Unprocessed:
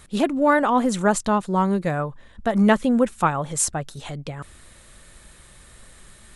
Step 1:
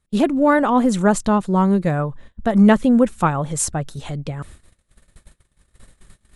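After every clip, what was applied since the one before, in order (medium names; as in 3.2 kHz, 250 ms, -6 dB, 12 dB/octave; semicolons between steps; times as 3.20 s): gate -44 dBFS, range -28 dB; bass shelf 400 Hz +7 dB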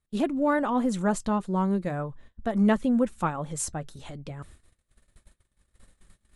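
flange 0.42 Hz, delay 2.6 ms, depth 1.3 ms, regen -74%; trim -5 dB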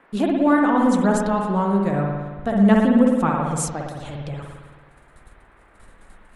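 spring tank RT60 1.4 s, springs 55 ms, chirp 65 ms, DRR 0 dB; band noise 180–1900 Hz -59 dBFS; trim +4 dB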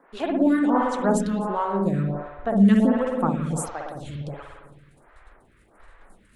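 lamp-driven phase shifter 1.4 Hz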